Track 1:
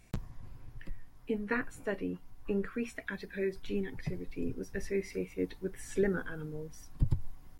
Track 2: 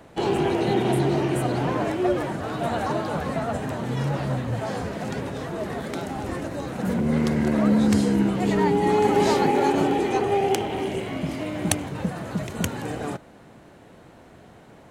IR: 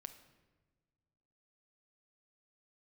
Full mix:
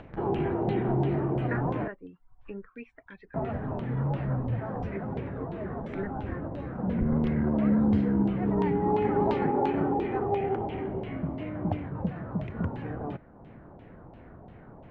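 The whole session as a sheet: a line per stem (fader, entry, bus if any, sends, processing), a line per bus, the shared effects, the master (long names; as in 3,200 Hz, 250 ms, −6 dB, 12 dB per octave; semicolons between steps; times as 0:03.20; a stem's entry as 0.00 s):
−3.5 dB, 0.00 s, no send, reverb reduction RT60 0.51 s; expander for the loud parts 1.5 to 1, over −43 dBFS
−11.0 dB, 0.00 s, muted 0:01.88–0:03.34, no send, spectral tilt −3 dB per octave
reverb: not used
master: auto-filter low-pass saw down 2.9 Hz 790–3,100 Hz; upward compression, threshold −41 dBFS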